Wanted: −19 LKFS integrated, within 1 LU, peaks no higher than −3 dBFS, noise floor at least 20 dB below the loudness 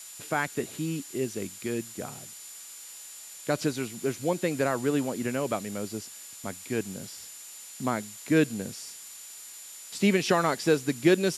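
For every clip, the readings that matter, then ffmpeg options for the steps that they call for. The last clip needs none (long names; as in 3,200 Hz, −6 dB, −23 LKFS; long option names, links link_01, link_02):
interfering tone 7,100 Hz; level of the tone −46 dBFS; background noise floor −45 dBFS; target noise floor −49 dBFS; integrated loudness −29.0 LKFS; sample peak −9.0 dBFS; target loudness −19.0 LKFS
→ -af "bandreject=frequency=7100:width=30"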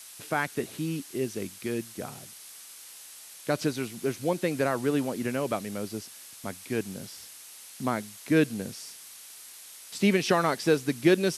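interfering tone none found; background noise floor −47 dBFS; target noise floor −50 dBFS
→ -af "afftdn=noise_reduction=6:noise_floor=-47"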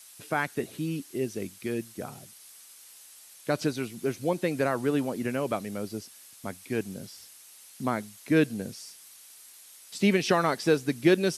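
background noise floor −52 dBFS; integrated loudness −29.0 LKFS; sample peak −9.0 dBFS; target loudness −19.0 LKFS
→ -af "volume=10dB,alimiter=limit=-3dB:level=0:latency=1"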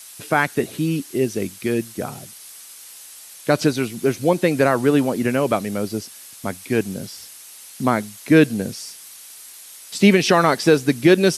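integrated loudness −19.5 LKFS; sample peak −3.0 dBFS; background noise floor −42 dBFS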